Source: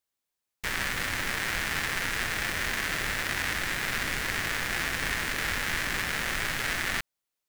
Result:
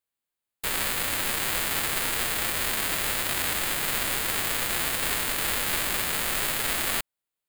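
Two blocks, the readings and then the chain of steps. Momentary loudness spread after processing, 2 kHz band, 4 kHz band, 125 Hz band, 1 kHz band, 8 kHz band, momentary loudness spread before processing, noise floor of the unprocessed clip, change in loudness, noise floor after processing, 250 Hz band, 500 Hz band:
1 LU, −2.0 dB, +3.5 dB, −1.5 dB, +2.5 dB, +7.5 dB, 1 LU, below −85 dBFS, +3.5 dB, below −85 dBFS, +1.0 dB, +4.0 dB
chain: spectral envelope flattened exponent 0.3
parametric band 5,700 Hz −11 dB 0.33 octaves
leveller curve on the samples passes 1

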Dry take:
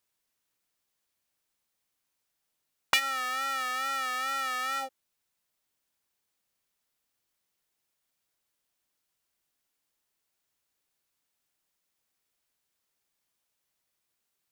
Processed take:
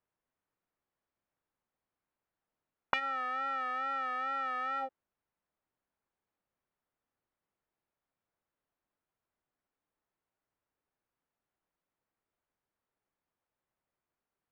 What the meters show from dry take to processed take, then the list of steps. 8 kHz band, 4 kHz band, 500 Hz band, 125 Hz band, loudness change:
below −25 dB, −15.0 dB, 0.0 dB, can't be measured, −5.0 dB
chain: low-pass filter 1,400 Hz 12 dB per octave

